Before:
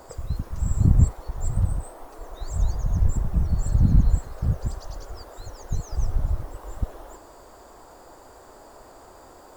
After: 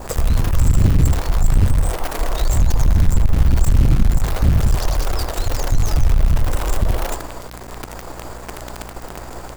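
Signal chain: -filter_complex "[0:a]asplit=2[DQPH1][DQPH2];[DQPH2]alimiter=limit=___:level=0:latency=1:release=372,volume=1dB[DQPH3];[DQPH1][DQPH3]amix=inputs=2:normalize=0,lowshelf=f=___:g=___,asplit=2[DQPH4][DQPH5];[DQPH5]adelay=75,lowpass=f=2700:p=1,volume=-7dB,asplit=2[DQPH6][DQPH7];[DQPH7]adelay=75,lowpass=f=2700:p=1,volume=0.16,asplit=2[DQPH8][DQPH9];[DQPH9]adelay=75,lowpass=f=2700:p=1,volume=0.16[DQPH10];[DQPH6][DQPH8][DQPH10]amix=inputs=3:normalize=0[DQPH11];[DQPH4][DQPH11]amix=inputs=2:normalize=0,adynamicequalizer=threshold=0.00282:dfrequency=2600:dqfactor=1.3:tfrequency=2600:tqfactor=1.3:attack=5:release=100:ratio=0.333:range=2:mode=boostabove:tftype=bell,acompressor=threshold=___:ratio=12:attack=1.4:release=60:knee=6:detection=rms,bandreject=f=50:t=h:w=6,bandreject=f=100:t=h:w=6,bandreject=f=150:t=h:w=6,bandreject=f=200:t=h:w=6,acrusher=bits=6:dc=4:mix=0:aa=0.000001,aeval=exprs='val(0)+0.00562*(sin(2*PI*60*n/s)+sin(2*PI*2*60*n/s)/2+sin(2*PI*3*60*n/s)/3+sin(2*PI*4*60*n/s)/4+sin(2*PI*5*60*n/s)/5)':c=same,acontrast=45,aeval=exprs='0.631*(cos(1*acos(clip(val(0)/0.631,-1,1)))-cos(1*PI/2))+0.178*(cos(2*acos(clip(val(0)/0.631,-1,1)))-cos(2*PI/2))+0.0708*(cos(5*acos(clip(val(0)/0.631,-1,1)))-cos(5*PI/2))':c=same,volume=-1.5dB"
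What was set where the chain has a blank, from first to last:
-13.5dB, 65, 7.5, -11dB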